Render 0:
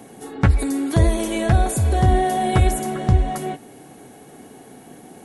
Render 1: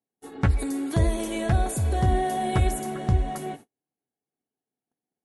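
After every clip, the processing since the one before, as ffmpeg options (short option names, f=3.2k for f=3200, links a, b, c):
-af "agate=range=-43dB:threshold=-35dB:ratio=16:detection=peak,volume=-6dB"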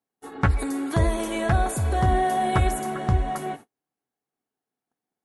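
-af "equalizer=f=1.2k:t=o:w=1.5:g=8"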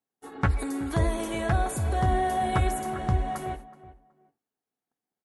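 -filter_complex "[0:a]asplit=2[a][b];[b]adelay=374,lowpass=f=1.5k:p=1,volume=-16dB,asplit=2[c][d];[d]adelay=374,lowpass=f=1.5k:p=1,volume=0.24[e];[a][c][e]amix=inputs=3:normalize=0,volume=-3.5dB"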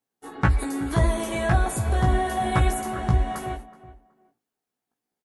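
-filter_complex "[0:a]asplit=2[a][b];[b]adelay=17,volume=-3.5dB[c];[a][c]amix=inputs=2:normalize=0,volume=2.5dB"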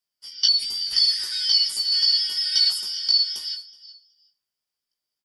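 -af "afftfilt=real='real(if(lt(b,272),68*(eq(floor(b/68),0)*3+eq(floor(b/68),1)*2+eq(floor(b/68),2)*1+eq(floor(b/68),3)*0)+mod(b,68),b),0)':imag='imag(if(lt(b,272),68*(eq(floor(b/68),0)*3+eq(floor(b/68),1)*2+eq(floor(b/68),2)*1+eq(floor(b/68),3)*0)+mod(b,68),b),0)':win_size=2048:overlap=0.75"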